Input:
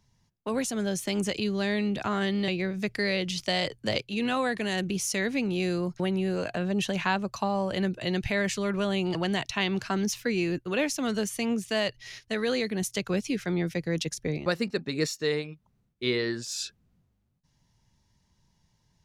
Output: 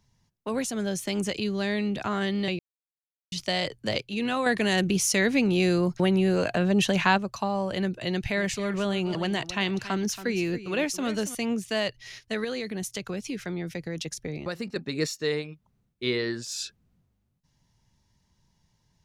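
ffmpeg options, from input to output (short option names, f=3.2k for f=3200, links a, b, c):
-filter_complex "[0:a]asettb=1/sr,asplit=3[a][b][c];[a]atrim=end=4.464[d];[b]atrim=start=4.46:end=7.18,asetpts=PTS-STARTPTS,afade=t=in:d=0.004:c=qsin,afade=t=out:st=2.716:d=0.004:c=qsin,acontrast=33[e];[c]atrim=start=7.176[f];[d][e]acrossfade=d=0.004:c1=hsin:c2=qsin[g];[g][f]acrossfade=d=0.004:c1=qsin:c2=hsin,asettb=1/sr,asplit=3[h][i][j];[h]atrim=end=8.094[k];[i]atrim=start=8.09:end=11.35,asetpts=PTS-STARTPTS,afade=t=in:d=0.004:c=qsin,afade=t=out:st=3.256:d=0.004:c=qsin,aecho=1:1:278:0.211,atrim=end_sample=143766[l];[j]atrim=start=11.346[m];[k][l]acrossfade=d=0.004:c1=hsin:c2=qsin[n];[n][m]acrossfade=d=0.004:c1=qsin:c2=hsin,asettb=1/sr,asplit=3[o][p][q];[o]atrim=end=12.444[r];[p]atrim=start=12.44:end=14.76,asetpts=PTS-STARTPTS,afade=t=in:d=0.004:c=qsin,afade=t=out:st=2.316:d=0.004:c=qsin,acompressor=threshold=-29dB:ratio=3:attack=3.2:release=140:knee=1:detection=peak[s];[q]atrim=start=14.756[t];[r][s]acrossfade=d=0.004:c1=hsin:c2=qsin[u];[u][t]acrossfade=d=0.004:c1=qsin:c2=hsin,asplit=3[v][w][x];[v]atrim=end=2.59,asetpts=PTS-STARTPTS,afade=t=out:st=2.586:d=0.004:c=hsin[y];[w]atrim=start=2.59:end=3.32,asetpts=PTS-STARTPTS,volume=0[z];[x]atrim=start=3.32,asetpts=PTS-STARTPTS,afade=t=in:d=0.004:c=hsin[aa];[y][z][aa]concat=n=3:v=0:a=1"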